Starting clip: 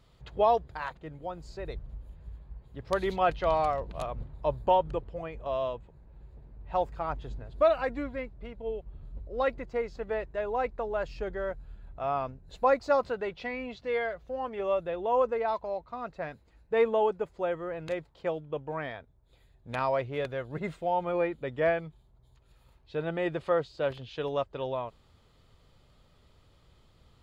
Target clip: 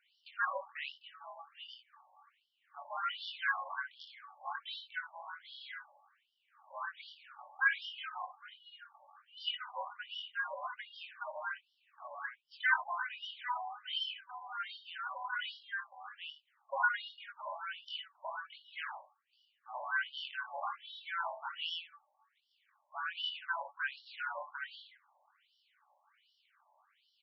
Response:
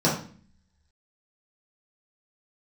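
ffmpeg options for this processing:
-filter_complex "[0:a]highpass=frequency=130:width=0.5412,highpass=frequency=130:width=1.3066,equalizer=frequency=2000:width=6.1:gain=11.5,aeval=exprs='val(0)*sin(2*PI*1000*n/s)':channel_layout=same,asplit=2[link_01][link_02];[link_02]aecho=0:1:46|59:0.141|0.355[link_03];[link_01][link_03]amix=inputs=2:normalize=0,asplit=3[link_04][link_05][link_06];[link_05]asetrate=29433,aresample=44100,atempo=1.49831,volume=-9dB[link_07];[link_06]asetrate=88200,aresample=44100,atempo=0.5,volume=-17dB[link_08];[link_04][link_07][link_08]amix=inputs=3:normalize=0,asplit=2[link_09][link_10];[link_10]asoftclip=type=tanh:threshold=-23.5dB,volume=-7.5dB[link_11];[link_09][link_11]amix=inputs=2:normalize=0,flanger=delay=20:depth=4.5:speed=0.85,afftfilt=real='re*between(b*sr/1024,760*pow(4100/760,0.5+0.5*sin(2*PI*1.3*pts/sr))/1.41,760*pow(4100/760,0.5+0.5*sin(2*PI*1.3*pts/sr))*1.41)':imag='im*between(b*sr/1024,760*pow(4100/760,0.5+0.5*sin(2*PI*1.3*pts/sr))/1.41,760*pow(4100/760,0.5+0.5*sin(2*PI*1.3*pts/sr))*1.41)':win_size=1024:overlap=0.75"

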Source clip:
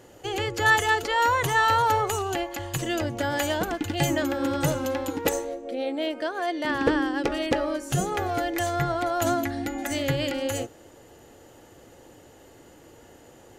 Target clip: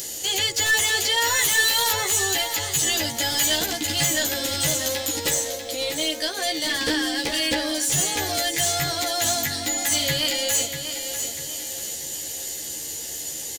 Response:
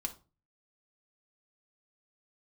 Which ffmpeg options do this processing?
-filter_complex "[0:a]asettb=1/sr,asplit=3[link_01][link_02][link_03];[link_01]atrim=end=1.354[link_04];[link_02]atrim=start=1.35:end=1.94,asetpts=PTS-STARTPTS,afade=type=in:duration=0.004:curve=qsin,afade=type=out:start_time=0.586:duration=0.004:curve=qsin,aemphasis=mode=production:type=bsi[link_05];[link_03]atrim=start=1.936[link_06];[link_04][link_05]acrossfade=duration=0.004:curve1=hsin:curve2=qsin[link_07];[link_07][link_06]acrossfade=duration=0.004:curve1=qsin:curve2=hsin,acrossover=split=3800[link_08][link_09];[link_09]acompressor=threshold=-41dB:ratio=4:attack=1:release=60[link_10];[link_08][link_10]amix=inputs=2:normalize=0,equalizer=frequency=2600:width_type=o:width=0.79:gain=-10,asplit=2[link_11][link_12];[link_12]acompressor=mode=upward:threshold=-29dB:ratio=2.5,volume=-3dB[link_13];[link_11][link_13]amix=inputs=2:normalize=0,acrusher=bits=11:mix=0:aa=0.000001,aexciter=amount=15.4:drive=3.9:freq=2000,asoftclip=type=tanh:threshold=-11dB,asplit=2[link_14][link_15];[link_15]adelay=13,volume=-2dB[link_16];[link_14][link_16]amix=inputs=2:normalize=0,asplit=2[link_17][link_18];[link_18]aecho=0:1:643|1286|1929|2572|3215:0.355|0.145|0.0596|0.0245|0.01[link_19];[link_17][link_19]amix=inputs=2:normalize=0,volume=-8.5dB"

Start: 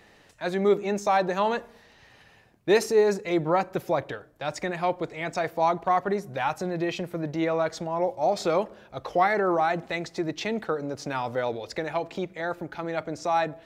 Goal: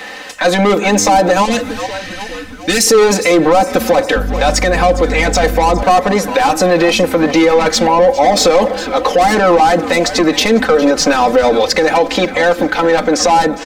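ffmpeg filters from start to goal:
ffmpeg -i in.wav -filter_complex "[0:a]asplit=2[link_01][link_02];[link_02]highpass=frequency=720:poles=1,volume=20dB,asoftclip=type=tanh:threshold=-11dB[link_03];[link_01][link_03]amix=inputs=2:normalize=0,lowpass=frequency=7700:poles=1,volume=-6dB,asettb=1/sr,asplit=3[link_04][link_05][link_06];[link_04]atrim=end=1.454[link_07];[link_05]atrim=start=1.45:end=2.87,asetpts=PTS-STARTPTS,afade=type=in:duration=0.004:curve=qsin,afade=type=out:start_time=1.416:duration=0.004:curve=qsin,equalizer=frequency=500:width_type=o:width=1:gain=-11,equalizer=frequency=1000:width_type=o:width=1:gain=-12,equalizer=frequency=8000:width_type=o:width=1:gain=4[link_08];[link_06]atrim=start=2.866[link_09];[link_07][link_08]acrossfade=duration=0.004:curve1=hsin:curve2=qsin[link_10];[link_10][link_09]acrossfade=duration=0.004:curve1=qsin:curve2=hsin,asplit=6[link_11][link_12][link_13][link_14][link_15][link_16];[link_12]adelay=407,afreqshift=-96,volume=-17.5dB[link_17];[link_13]adelay=814,afreqshift=-192,volume=-22.2dB[link_18];[link_14]adelay=1221,afreqshift=-288,volume=-27dB[link_19];[link_15]adelay=1628,afreqshift=-384,volume=-31.7dB[link_20];[link_16]adelay=2035,afreqshift=-480,volume=-36.4dB[link_21];[link_11][link_17][link_18][link_19][link_20][link_21]amix=inputs=6:normalize=0,asettb=1/sr,asplit=3[link_22][link_23][link_24];[link_22]atrim=end=4.164[link_25];[link_23]atrim=start=4.16:end=5.83,asetpts=PTS-STARTPTS,afade=type=in:duration=0.004:curve=qsin,afade=type=out:start_time=1.666:duration=0.004:curve=qsin,aeval=exprs='val(0)+0.0282*(sin(2*PI*50*n/s)+sin(2*PI*2*50*n/s)/2+sin(2*PI*3*50*n/s)/3+sin(2*PI*4*50*n/s)/4+sin(2*PI*5*50*n/s)/5)':channel_layout=same[link_26];[link_24]atrim=start=5.826[link_27];[link_25][link_26]acrossfade=duration=0.004:curve1=hsin:curve2=qsin[link_28];[link_28][link_27]acrossfade=duration=0.004:curve1=qsin:curve2=hsin,aecho=1:1:3.9:0.95,acrossover=split=650|5300[link_29][link_30][link_31];[link_30]acompressor=threshold=-26dB:ratio=6[link_32];[link_29][link_32][link_31]amix=inputs=3:normalize=0,alimiter=level_in=13dB:limit=-1dB:release=50:level=0:latency=1,volume=-1dB" out.wav

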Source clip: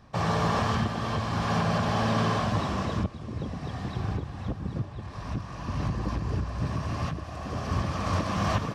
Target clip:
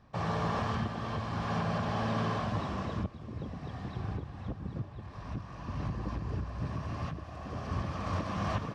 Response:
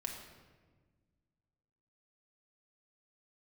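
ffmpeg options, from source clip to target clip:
-af "highshelf=frequency=6300:gain=-11,volume=-6dB"

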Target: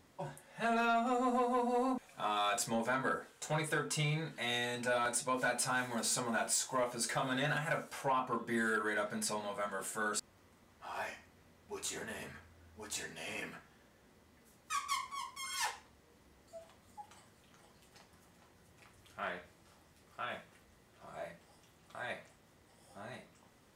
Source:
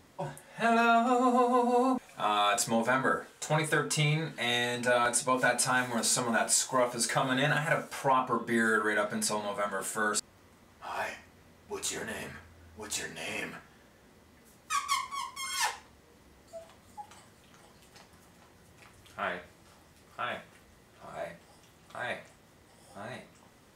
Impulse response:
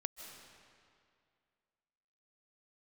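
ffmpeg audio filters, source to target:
-af "asoftclip=type=tanh:threshold=-17.5dB,volume=-6dB"

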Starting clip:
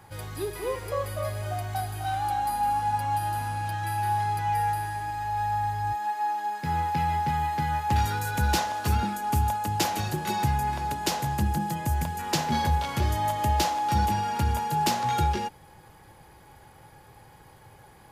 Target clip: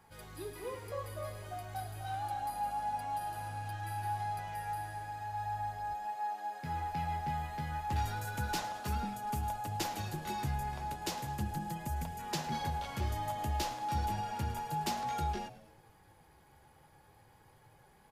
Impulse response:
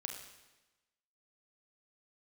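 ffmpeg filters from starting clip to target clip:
-filter_complex "[0:a]flanger=delay=4.4:depth=9.5:regen=-40:speed=0.33:shape=sinusoidal,asplit=5[link_01][link_02][link_03][link_04][link_05];[link_02]adelay=107,afreqshift=-97,volume=-17dB[link_06];[link_03]adelay=214,afreqshift=-194,volume=-22.8dB[link_07];[link_04]adelay=321,afreqshift=-291,volume=-28.7dB[link_08];[link_05]adelay=428,afreqshift=-388,volume=-34.5dB[link_09];[link_01][link_06][link_07][link_08][link_09]amix=inputs=5:normalize=0,volume=-6.5dB"

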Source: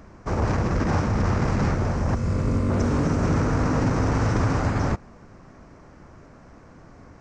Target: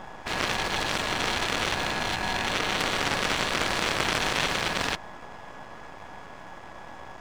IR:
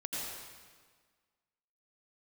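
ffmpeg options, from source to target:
-filter_complex "[0:a]asplit=2[link_01][link_02];[link_02]asoftclip=type=tanh:threshold=-25dB,volume=-5dB[link_03];[link_01][link_03]amix=inputs=2:normalize=0,aeval=exprs='val(0)*sin(2*PI*840*n/s)':channel_layout=same,aeval=exprs='max(val(0),0)':channel_layout=same,aeval=exprs='0.299*(cos(1*acos(clip(val(0)/0.299,-1,1)))-cos(1*PI/2))+0.0596*(cos(4*acos(clip(val(0)/0.299,-1,1)))-cos(4*PI/2))+0.0473*(cos(8*acos(clip(val(0)/0.299,-1,1)))-cos(8*PI/2))':channel_layout=same,volume=9dB"

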